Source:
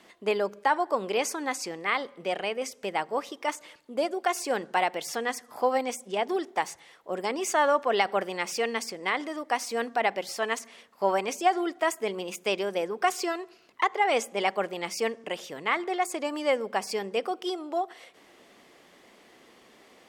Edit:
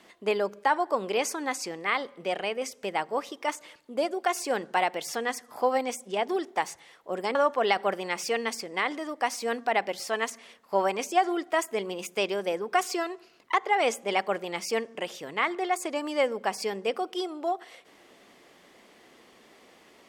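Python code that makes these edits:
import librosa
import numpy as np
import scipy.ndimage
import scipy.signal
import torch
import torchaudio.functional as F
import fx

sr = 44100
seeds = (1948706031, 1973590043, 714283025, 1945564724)

y = fx.edit(x, sr, fx.cut(start_s=7.35, length_s=0.29), tone=tone)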